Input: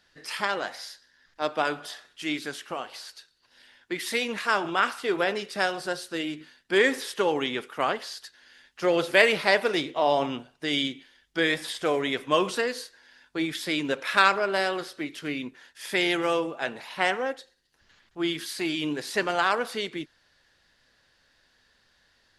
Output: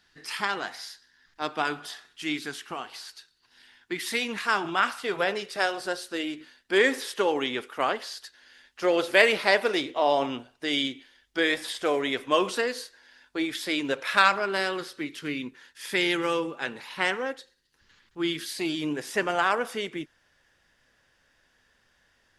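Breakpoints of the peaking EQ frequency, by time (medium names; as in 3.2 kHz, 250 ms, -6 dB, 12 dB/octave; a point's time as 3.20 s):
peaking EQ -12 dB 0.31 oct
4.62 s 560 Hz
5.83 s 160 Hz
13.82 s 160 Hz
14.55 s 670 Hz
18.32 s 670 Hz
18.95 s 4.2 kHz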